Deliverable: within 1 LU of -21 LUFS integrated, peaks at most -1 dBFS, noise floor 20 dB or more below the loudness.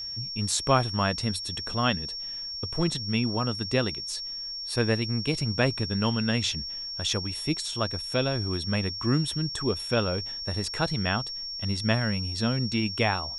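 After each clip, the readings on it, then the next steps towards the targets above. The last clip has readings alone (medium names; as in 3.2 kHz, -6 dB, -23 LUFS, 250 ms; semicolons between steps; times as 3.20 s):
tick rate 28 per s; steady tone 5.5 kHz; tone level -33 dBFS; loudness -27.5 LUFS; peak level -9.5 dBFS; loudness target -21.0 LUFS
-> de-click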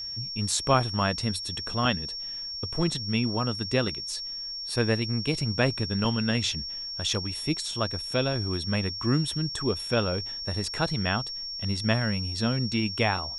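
tick rate 0 per s; steady tone 5.5 kHz; tone level -33 dBFS
-> band-stop 5.5 kHz, Q 30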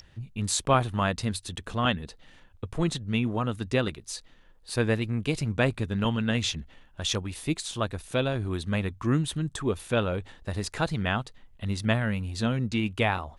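steady tone not found; loudness -28.5 LUFS; peak level -9.5 dBFS; loudness target -21.0 LUFS
-> trim +7.5 dB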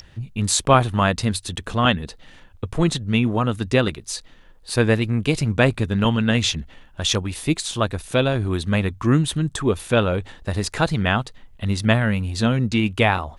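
loudness -21.0 LUFS; peak level -2.0 dBFS; noise floor -48 dBFS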